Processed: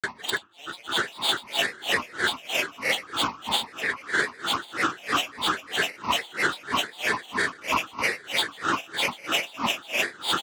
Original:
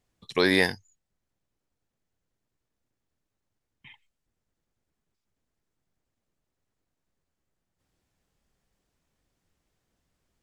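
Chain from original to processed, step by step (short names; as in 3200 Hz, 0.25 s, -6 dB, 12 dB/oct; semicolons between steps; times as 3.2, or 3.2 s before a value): per-bin compression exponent 0.2; frequency-shifting echo 0.234 s, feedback 31%, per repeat +87 Hz, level -11 dB; negative-ratio compressor -30 dBFS, ratio -0.5; bell 3300 Hz -14.5 dB 0.75 oct; limiter -26.5 dBFS, peak gain reduction 8.5 dB; ten-band EQ 125 Hz +5 dB, 250 Hz -4 dB, 500 Hz +8 dB, 2000 Hz +11 dB, 4000 Hz +8 dB, 8000 Hz +11 dB; reverb RT60 1.0 s, pre-delay 3 ms, DRR 3.5 dB; grains, pitch spread up and down by 12 st; dB-linear tremolo 3.1 Hz, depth 25 dB; gain +6 dB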